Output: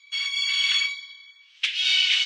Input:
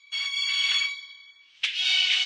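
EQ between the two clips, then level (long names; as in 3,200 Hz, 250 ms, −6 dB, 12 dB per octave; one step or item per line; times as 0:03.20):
high-pass filter 1,100 Hz 12 dB per octave
+2.0 dB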